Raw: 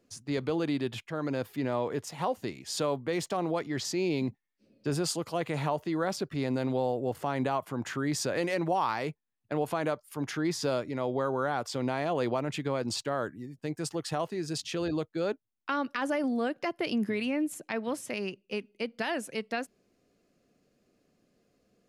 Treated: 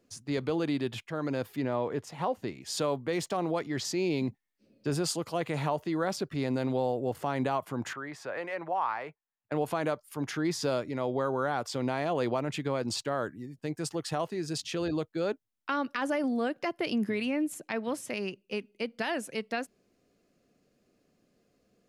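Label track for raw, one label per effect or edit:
1.620000	2.620000	high shelf 4100 Hz -8.5 dB
7.930000	9.520000	three-band isolator lows -15 dB, under 560 Hz, highs -19 dB, over 2400 Hz

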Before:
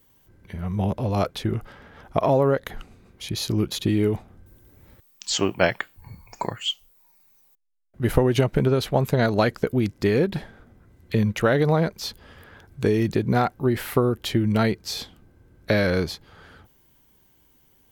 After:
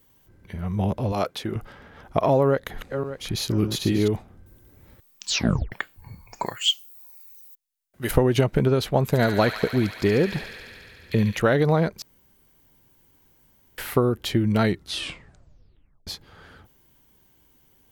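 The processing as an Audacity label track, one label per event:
1.120000	1.560000	HPF 280 Hz 6 dB/oct
2.450000	4.080000	regenerating reverse delay 0.294 s, feedback 51%, level -7 dB
5.290000	5.290000	tape stop 0.43 s
6.460000	8.110000	tilt +3 dB/oct
9.050000	11.390000	thin delay 71 ms, feedback 84%, high-pass 1600 Hz, level -5.5 dB
12.020000	13.780000	room tone
14.620000	14.620000	tape stop 1.45 s

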